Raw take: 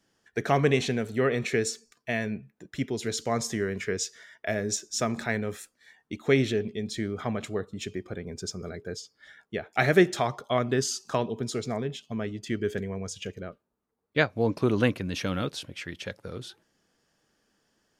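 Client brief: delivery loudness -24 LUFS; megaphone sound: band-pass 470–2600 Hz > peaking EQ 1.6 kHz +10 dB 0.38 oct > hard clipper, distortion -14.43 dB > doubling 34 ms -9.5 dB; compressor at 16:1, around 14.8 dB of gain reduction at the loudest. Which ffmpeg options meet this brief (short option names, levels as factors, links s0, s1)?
-filter_complex "[0:a]acompressor=threshold=0.0398:ratio=16,highpass=470,lowpass=2600,equalizer=f=1600:t=o:w=0.38:g=10,asoftclip=type=hard:threshold=0.0531,asplit=2[s0][s1];[s1]adelay=34,volume=0.335[s2];[s0][s2]amix=inputs=2:normalize=0,volume=5.01"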